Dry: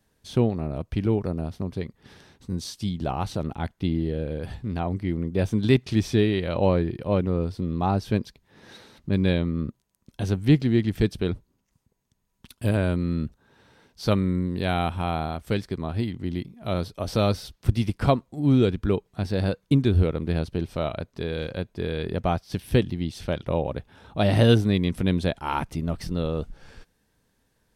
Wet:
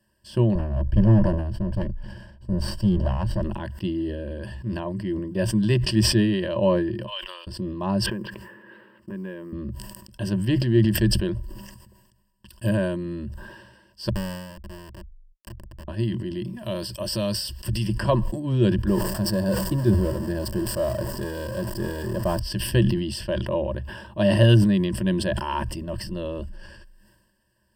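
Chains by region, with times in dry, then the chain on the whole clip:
0:00.55–0:03.42: lower of the sound and its delayed copy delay 1.3 ms + spectral tilt −3 dB per octave
0:07.06–0:07.47: Bessel high-pass filter 1,500 Hz, order 4 + noise gate −52 dBFS, range −22 dB + parametric band 3,100 Hz +15 dB 0.4 octaves
0:08.06–0:09.53: loudspeaker in its box 180–2,500 Hz, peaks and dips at 450 Hz +8 dB, 670 Hz −9 dB, 1,300 Hz +6 dB + downward compressor, threshold −29 dBFS + log-companded quantiser 8 bits
0:14.09–0:15.88: drawn EQ curve 170 Hz 0 dB, 270 Hz −5 dB, 460 Hz −16 dB, 900 Hz −6 dB, 4,800 Hz −20 dB, 8,400 Hz +14 dB + downward compressor 10 to 1, threshold −31 dBFS + comparator with hysteresis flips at −31.5 dBFS
0:16.59–0:17.87: high-shelf EQ 2,600 Hz +10.5 dB + downward compressor 2 to 1, threshold −25 dBFS
0:18.87–0:22.40: converter with a step at zero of −28.5 dBFS + parametric band 2,700 Hz −9.5 dB 1.1 octaves
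whole clip: EQ curve with evenly spaced ripples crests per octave 1.3, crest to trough 17 dB; level that may fall only so fast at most 45 dB per second; level −4 dB

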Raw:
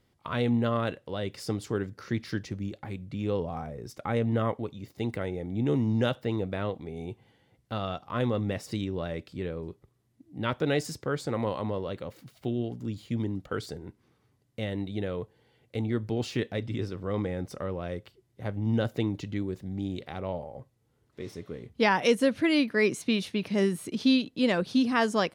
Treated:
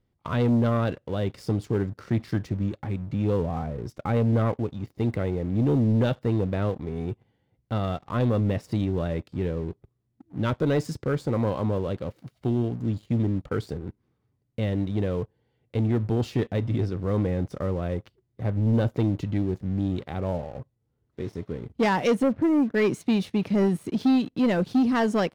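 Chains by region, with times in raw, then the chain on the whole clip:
0:22.23–0:22.75: low-pass filter 1,100 Hz + downward expander −45 dBFS
whole clip: spectral tilt −2 dB per octave; leveller curve on the samples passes 2; level −5 dB

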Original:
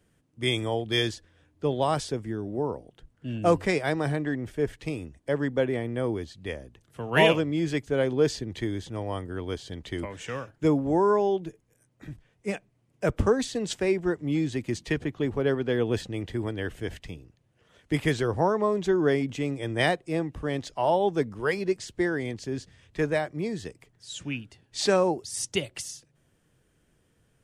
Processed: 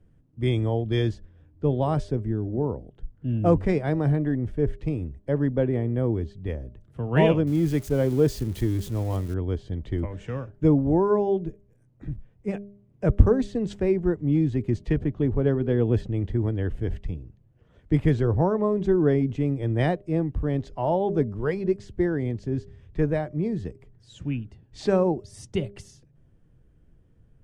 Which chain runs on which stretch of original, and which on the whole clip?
0:07.47–0:09.34: spike at every zero crossing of −23.5 dBFS + high-shelf EQ 5,300 Hz +5.5 dB
whole clip: spectral tilt −4 dB per octave; hum removal 201.7 Hz, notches 3; level −3.5 dB

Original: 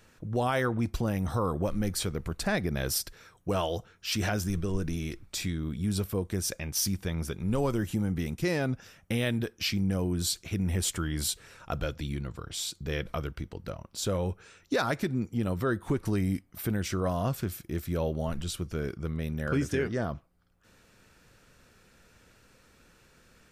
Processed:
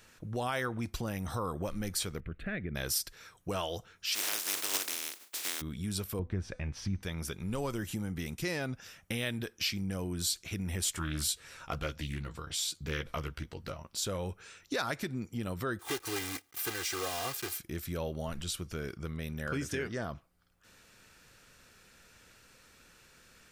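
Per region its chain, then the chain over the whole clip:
0:02.20–0:02.75: high-frequency loss of the air 430 metres + phaser with its sweep stopped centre 2,200 Hz, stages 4
0:04.14–0:05.60: compressing power law on the bin magnitudes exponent 0.18 + low shelf with overshoot 200 Hz −13 dB, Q 1.5 + expander for the loud parts, over −43 dBFS
0:06.19–0:07.03: low-pass filter 2,000 Hz + low-shelf EQ 150 Hz +11.5 dB + hum removal 251.8 Hz, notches 38
0:10.96–0:13.88: double-tracking delay 13 ms −5.5 dB + highs frequency-modulated by the lows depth 0.25 ms
0:15.79–0:17.60: one scale factor per block 3 bits + high-pass filter 360 Hz 6 dB per octave + comb filter 2.5 ms, depth 76%
whole clip: tilt shelving filter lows −4 dB, about 1,100 Hz; downward compressor 1.5 to 1, threshold −38 dBFS

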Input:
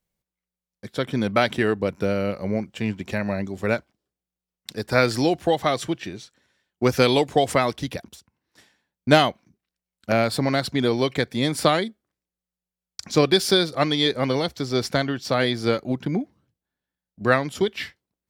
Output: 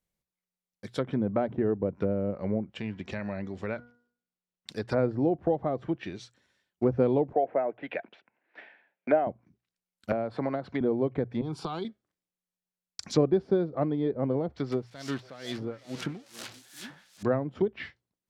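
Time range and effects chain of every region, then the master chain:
0:02.77–0:04.70: hum removal 240.7 Hz, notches 8 + downward compressor 2 to 1, threshold −28 dBFS + high-frequency loss of the air 61 metres
0:07.33–0:09.27: loudspeaker in its box 440–2,600 Hz, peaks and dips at 660 Hz +6 dB, 1,100 Hz −7 dB, 1,600 Hz +4 dB, 2,400 Hz +6 dB + multiband upward and downward compressor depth 40%
0:10.12–0:10.81: low-shelf EQ 290 Hz −11.5 dB + multiband upward and downward compressor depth 70%
0:11.41–0:11.85: downward compressor, threshold −21 dBFS + phaser with its sweep stopped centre 380 Hz, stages 8
0:14.72–0:17.23: spike at every zero crossing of −14 dBFS + echo through a band-pass that steps 167 ms, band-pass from 4,800 Hz, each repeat −1.4 octaves, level −6 dB + tremolo with a sine in dB 2.3 Hz, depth 22 dB
whole clip: treble cut that deepens with the level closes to 630 Hz, closed at −19.5 dBFS; mains-hum notches 60/120 Hz; level −4 dB

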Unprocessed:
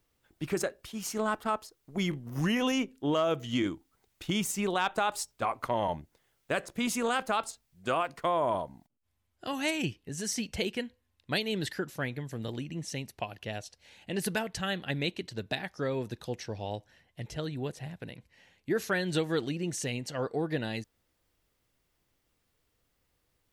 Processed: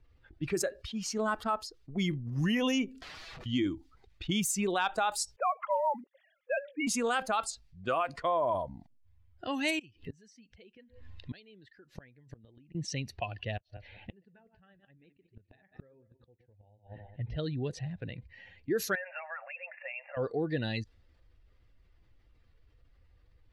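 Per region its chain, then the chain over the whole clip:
0:02.92–0:03.46: double-tracking delay 26 ms −4 dB + downward compressor 5 to 1, threshold −40 dBFS + wrap-around overflow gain 45 dB
0:05.36–0:06.87: three sine waves on the formant tracks + floating-point word with a short mantissa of 4 bits
0:09.79–0:12.75: parametric band 78 Hz −4.5 dB 2.2 octaves + upward compression, threshold −36 dBFS + gate with flip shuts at −30 dBFS, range −31 dB
0:13.57–0:17.35: feedback delay that plays each chunk backwards 100 ms, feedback 46%, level −9 dB + gate with flip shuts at −29 dBFS, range −39 dB + high-frequency loss of the air 270 metres
0:18.95–0:20.17: linear-phase brick-wall band-pass 520–2,800 Hz + downward compressor, threshold −39 dBFS
whole clip: spectral dynamics exaggerated over time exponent 1.5; low-pass that shuts in the quiet parts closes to 2,300 Hz, open at −28.5 dBFS; envelope flattener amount 50%

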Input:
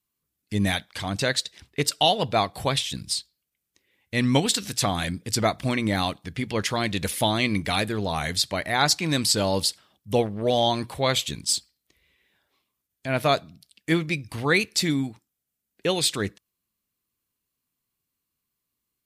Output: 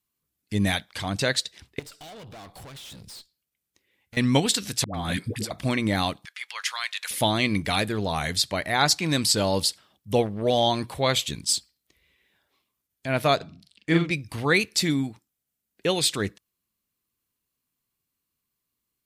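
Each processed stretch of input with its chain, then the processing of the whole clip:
0:01.79–0:04.17: downward compressor, threshold −27 dBFS + tube saturation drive 41 dB, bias 0.45
0:04.84–0:05.51: parametric band 6,100 Hz −4 dB 0.63 octaves + compressor whose output falls as the input rises −30 dBFS + all-pass dispersion highs, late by 101 ms, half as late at 540 Hz
0:06.25–0:07.11: high-pass filter 1,100 Hz 24 dB per octave + high-shelf EQ 10,000 Hz −3.5 dB
0:13.36–0:14.11: high-frequency loss of the air 72 metres + double-tracking delay 42 ms −3 dB
whole clip: no processing

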